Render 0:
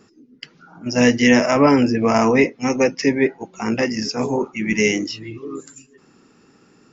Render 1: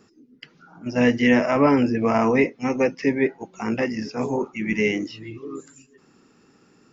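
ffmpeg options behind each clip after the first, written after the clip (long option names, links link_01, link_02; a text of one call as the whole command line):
ffmpeg -i in.wav -filter_complex "[0:a]acrossover=split=3500[link_01][link_02];[link_02]acompressor=threshold=-43dB:ratio=4:attack=1:release=60[link_03];[link_01][link_03]amix=inputs=2:normalize=0,volume=-3.5dB" out.wav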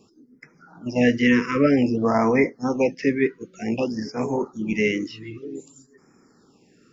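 ffmpeg -i in.wav -af "afftfilt=real='re*(1-between(b*sr/1024,670*pow(3600/670,0.5+0.5*sin(2*PI*0.53*pts/sr))/1.41,670*pow(3600/670,0.5+0.5*sin(2*PI*0.53*pts/sr))*1.41))':imag='im*(1-between(b*sr/1024,670*pow(3600/670,0.5+0.5*sin(2*PI*0.53*pts/sr))/1.41,670*pow(3600/670,0.5+0.5*sin(2*PI*0.53*pts/sr))*1.41))':win_size=1024:overlap=0.75" out.wav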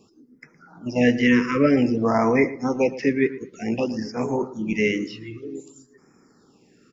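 ffmpeg -i in.wav -filter_complex "[0:a]asplit=2[link_01][link_02];[link_02]adelay=114,lowpass=frequency=2000:poles=1,volume=-15dB,asplit=2[link_03][link_04];[link_04]adelay=114,lowpass=frequency=2000:poles=1,volume=0.32,asplit=2[link_05][link_06];[link_06]adelay=114,lowpass=frequency=2000:poles=1,volume=0.32[link_07];[link_01][link_03][link_05][link_07]amix=inputs=4:normalize=0" out.wav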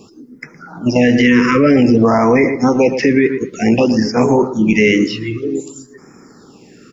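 ffmpeg -i in.wav -af "alimiter=level_in=16.5dB:limit=-1dB:release=50:level=0:latency=1,volume=-2dB" out.wav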